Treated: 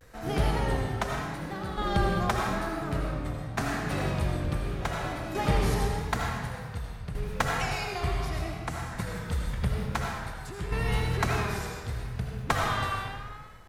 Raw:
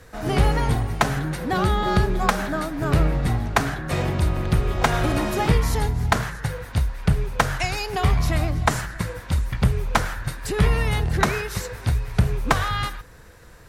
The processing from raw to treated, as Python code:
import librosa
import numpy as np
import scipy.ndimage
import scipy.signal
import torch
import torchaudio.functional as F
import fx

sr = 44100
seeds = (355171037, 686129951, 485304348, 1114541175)

y = fx.tremolo_shape(x, sr, shape='saw_down', hz=0.56, depth_pct=75)
y = fx.rev_freeverb(y, sr, rt60_s=1.7, hf_ratio=0.8, predelay_ms=40, drr_db=-1.0)
y = fx.vibrato(y, sr, rate_hz=0.83, depth_cents=81.0)
y = y * librosa.db_to_amplitude(-7.0)